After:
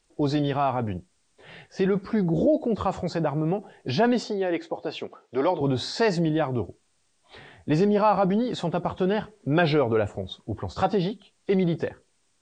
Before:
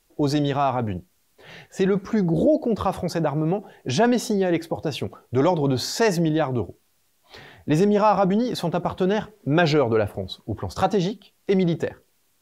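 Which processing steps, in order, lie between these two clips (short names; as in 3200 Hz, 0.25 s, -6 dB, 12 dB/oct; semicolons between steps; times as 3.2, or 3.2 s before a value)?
nonlinear frequency compression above 3200 Hz 1.5:1; 4.23–5.61 BPF 310–5500 Hz; gain -2.5 dB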